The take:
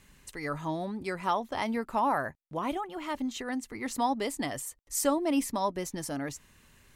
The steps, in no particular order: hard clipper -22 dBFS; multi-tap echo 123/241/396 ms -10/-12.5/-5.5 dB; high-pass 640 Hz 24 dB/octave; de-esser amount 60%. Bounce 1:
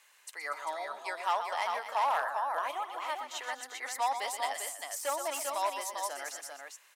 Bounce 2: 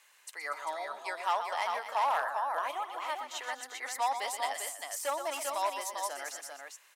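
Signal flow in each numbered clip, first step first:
multi-tap echo > hard clipper > de-esser > high-pass; de-esser > multi-tap echo > hard clipper > high-pass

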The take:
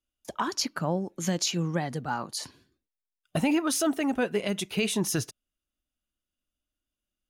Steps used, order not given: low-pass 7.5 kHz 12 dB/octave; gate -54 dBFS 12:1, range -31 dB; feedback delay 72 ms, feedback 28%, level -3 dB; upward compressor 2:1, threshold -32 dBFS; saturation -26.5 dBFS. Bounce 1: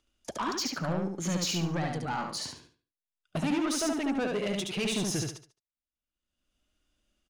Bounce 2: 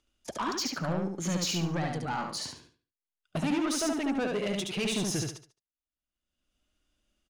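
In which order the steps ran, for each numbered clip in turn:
low-pass > gate > upward compressor > saturation > feedback delay; gate > upward compressor > low-pass > saturation > feedback delay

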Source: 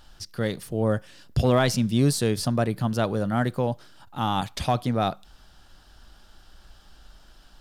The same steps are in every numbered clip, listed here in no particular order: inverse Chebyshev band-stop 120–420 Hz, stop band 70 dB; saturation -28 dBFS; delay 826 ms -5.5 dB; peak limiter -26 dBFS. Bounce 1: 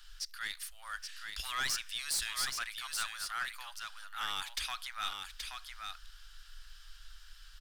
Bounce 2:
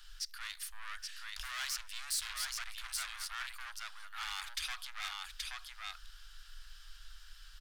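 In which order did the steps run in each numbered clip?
inverse Chebyshev band-stop > saturation > peak limiter > delay; delay > saturation > inverse Chebyshev band-stop > peak limiter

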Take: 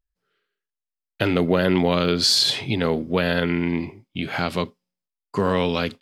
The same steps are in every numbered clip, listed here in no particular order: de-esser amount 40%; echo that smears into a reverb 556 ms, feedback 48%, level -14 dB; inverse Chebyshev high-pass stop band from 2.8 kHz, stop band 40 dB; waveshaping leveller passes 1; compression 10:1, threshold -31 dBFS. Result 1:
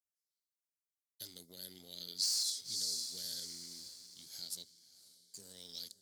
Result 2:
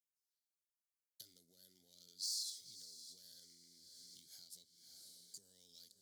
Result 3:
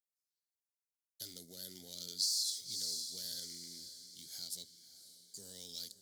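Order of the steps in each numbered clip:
echo that smears into a reverb > de-esser > inverse Chebyshev high-pass > waveshaping leveller > compression; de-esser > waveshaping leveller > echo that smears into a reverb > compression > inverse Chebyshev high-pass; waveshaping leveller > inverse Chebyshev high-pass > de-esser > echo that smears into a reverb > compression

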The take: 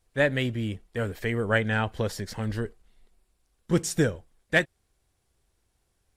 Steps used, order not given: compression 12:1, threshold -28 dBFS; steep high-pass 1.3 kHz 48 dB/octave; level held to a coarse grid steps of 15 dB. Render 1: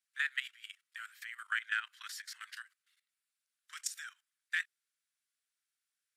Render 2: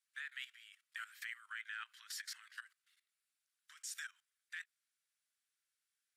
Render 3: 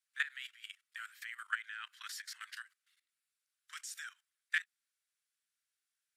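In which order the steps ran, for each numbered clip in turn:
steep high-pass > level held to a coarse grid > compression; compression > steep high-pass > level held to a coarse grid; steep high-pass > compression > level held to a coarse grid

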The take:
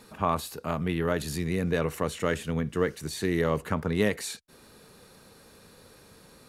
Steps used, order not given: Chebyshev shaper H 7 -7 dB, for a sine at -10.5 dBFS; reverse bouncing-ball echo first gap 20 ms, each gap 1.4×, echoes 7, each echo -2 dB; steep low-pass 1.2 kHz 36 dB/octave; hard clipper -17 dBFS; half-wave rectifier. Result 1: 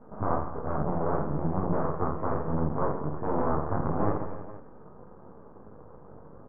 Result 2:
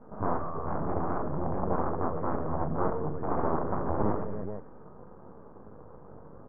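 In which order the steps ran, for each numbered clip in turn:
hard clipper > Chebyshev shaper > reverse bouncing-ball echo > half-wave rectifier > steep low-pass; reverse bouncing-ball echo > hard clipper > Chebyshev shaper > half-wave rectifier > steep low-pass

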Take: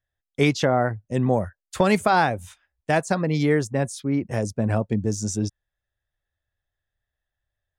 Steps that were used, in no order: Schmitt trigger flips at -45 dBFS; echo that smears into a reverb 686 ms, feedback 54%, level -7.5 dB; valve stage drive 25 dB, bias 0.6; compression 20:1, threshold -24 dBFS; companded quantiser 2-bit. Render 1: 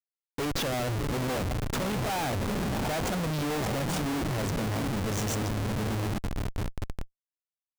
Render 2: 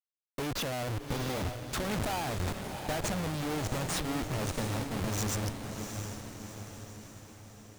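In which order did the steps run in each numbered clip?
compression > valve stage > echo that smears into a reverb > companded quantiser > Schmitt trigger; compression > companded quantiser > Schmitt trigger > echo that smears into a reverb > valve stage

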